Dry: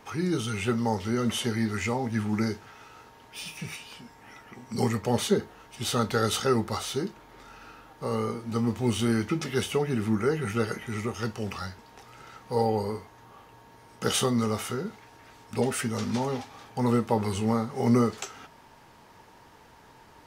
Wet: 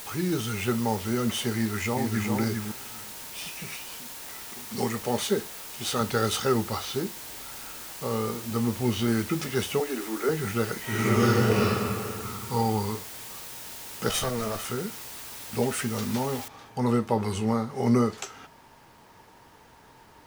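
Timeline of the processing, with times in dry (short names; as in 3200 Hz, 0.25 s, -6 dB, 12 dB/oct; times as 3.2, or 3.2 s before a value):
1.56–2.31 echo throw 0.4 s, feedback 10%, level -4.5 dB
3.49–6.01 low shelf 140 Hz -11 dB
6.52–9.08 LPF 6000 Hz 24 dB/oct
9.8–10.29 steep high-pass 250 Hz 72 dB/oct
10.8–11.61 reverb throw, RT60 2.5 s, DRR -10.5 dB
12.23–12.95 comb 0.9 ms, depth 66%
14.09–14.65 minimum comb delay 1.6 ms
16.48 noise floor step -41 dB -68 dB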